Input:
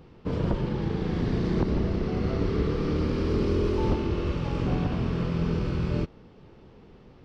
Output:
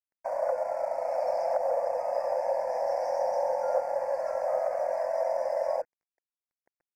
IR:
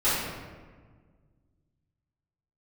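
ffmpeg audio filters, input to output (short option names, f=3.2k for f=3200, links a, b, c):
-filter_complex "[0:a]aemphasis=mode=production:type=75fm,afftdn=nr=20:nf=-39,acrossover=split=280[a][b];[b]acompressor=threshold=-41dB:ratio=6[c];[a][c]amix=inputs=2:normalize=0,crystalizer=i=2:c=0,afreqshift=460,aeval=exprs='sgn(val(0))*max(abs(val(0))-0.00376,0)':c=same,asetrate=45938,aresample=44100,asuperstop=centerf=3400:order=8:qfactor=1.5"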